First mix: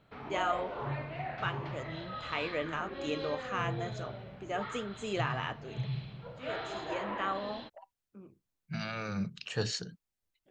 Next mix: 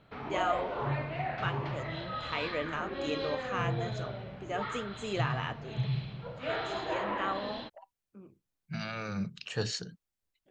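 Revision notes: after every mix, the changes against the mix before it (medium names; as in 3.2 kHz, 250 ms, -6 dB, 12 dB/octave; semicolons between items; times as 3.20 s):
background +4.0 dB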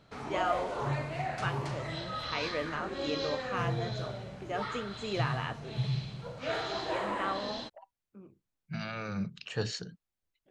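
background: remove low-pass 3.4 kHz 24 dB/octave; master: add treble shelf 5.1 kHz -5.5 dB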